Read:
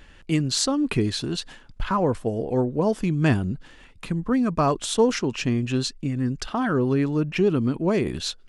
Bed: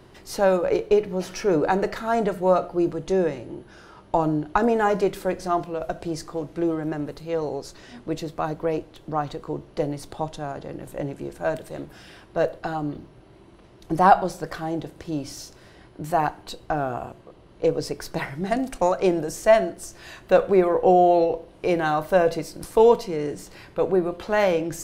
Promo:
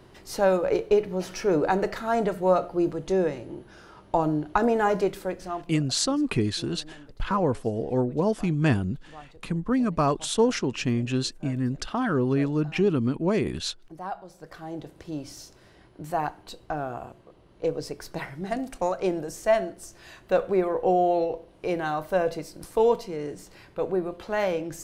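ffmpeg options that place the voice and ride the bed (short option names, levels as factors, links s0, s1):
-filter_complex "[0:a]adelay=5400,volume=0.794[s0];[1:a]volume=3.98,afade=t=out:st=4.98:d=0.85:silence=0.133352,afade=t=in:st=14.26:d=0.69:silence=0.199526[s1];[s0][s1]amix=inputs=2:normalize=0"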